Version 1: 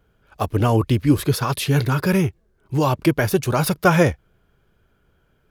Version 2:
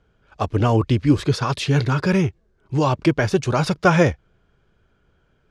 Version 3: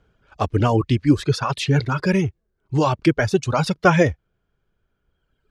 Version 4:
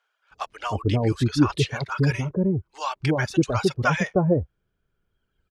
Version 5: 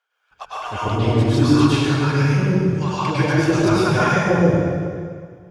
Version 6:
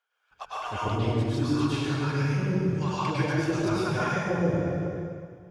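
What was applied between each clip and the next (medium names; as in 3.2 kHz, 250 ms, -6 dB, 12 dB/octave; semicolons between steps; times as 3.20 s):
low-pass 7.3 kHz 24 dB/octave
reverb removal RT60 1.7 s; trim +1 dB
bands offset in time highs, lows 310 ms, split 760 Hz; trim -3 dB
plate-style reverb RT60 2 s, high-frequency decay 0.85×, pre-delay 90 ms, DRR -9.5 dB; trim -4 dB
gain riding within 4 dB 0.5 s; trim -9 dB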